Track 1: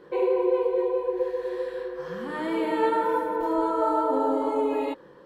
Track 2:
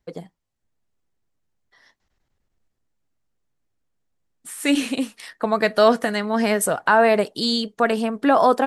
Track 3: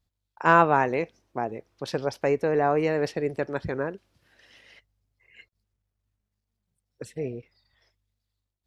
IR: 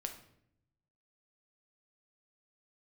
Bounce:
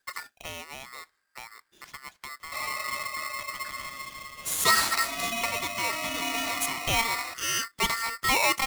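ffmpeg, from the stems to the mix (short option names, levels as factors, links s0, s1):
-filter_complex "[0:a]asoftclip=type=tanh:threshold=0.178,highpass=f=610:p=1,adelay=2400,volume=0.422,asplit=2[s0][s1];[s1]volume=0.266[s2];[1:a]bandreject=f=4000:w=14,asoftclip=type=tanh:threshold=0.531,volume=1.58,afade=t=out:st=5.31:d=0.22:silence=0.237137,afade=t=in:st=6.71:d=0.44:silence=0.398107[s3];[2:a]lowpass=2500,acompressor=threshold=0.0447:ratio=4,volume=0.224,asplit=3[s4][s5][s6];[s5]volume=0.0841[s7];[s6]apad=whole_len=382180[s8];[s3][s8]sidechaincompress=threshold=0.00355:ratio=8:attack=9.1:release=532[s9];[3:a]atrim=start_sample=2205[s10];[s2][s7]amix=inputs=2:normalize=0[s11];[s11][s10]afir=irnorm=-1:irlink=0[s12];[s0][s9][s4][s12]amix=inputs=4:normalize=0,highshelf=f=6100:g=-10,crystalizer=i=5.5:c=0,aeval=exprs='val(0)*sgn(sin(2*PI*1600*n/s))':c=same"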